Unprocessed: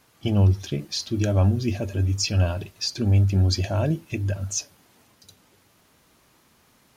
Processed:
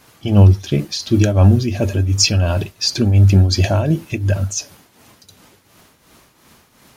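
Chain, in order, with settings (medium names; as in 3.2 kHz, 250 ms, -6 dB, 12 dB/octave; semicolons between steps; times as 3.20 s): tremolo triangle 2.8 Hz, depth 70%; loudness maximiser +13.5 dB; trim -1 dB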